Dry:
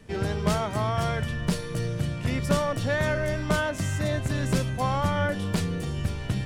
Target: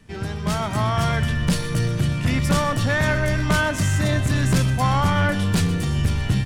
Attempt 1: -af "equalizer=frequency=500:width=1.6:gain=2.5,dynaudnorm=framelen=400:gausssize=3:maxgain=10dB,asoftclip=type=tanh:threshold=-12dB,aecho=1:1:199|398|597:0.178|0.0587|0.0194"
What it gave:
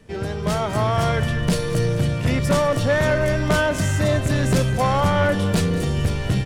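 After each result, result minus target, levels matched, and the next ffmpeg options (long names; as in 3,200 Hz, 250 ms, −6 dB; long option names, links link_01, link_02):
echo 75 ms late; 500 Hz band +6.0 dB
-af "equalizer=frequency=500:width=1.6:gain=2.5,dynaudnorm=framelen=400:gausssize=3:maxgain=10dB,asoftclip=type=tanh:threshold=-12dB,aecho=1:1:124|248|372:0.178|0.0587|0.0194"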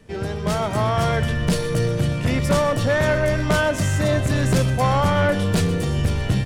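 500 Hz band +5.5 dB
-af "equalizer=frequency=500:width=1.6:gain=-7.5,dynaudnorm=framelen=400:gausssize=3:maxgain=10dB,asoftclip=type=tanh:threshold=-12dB,aecho=1:1:124|248|372:0.178|0.0587|0.0194"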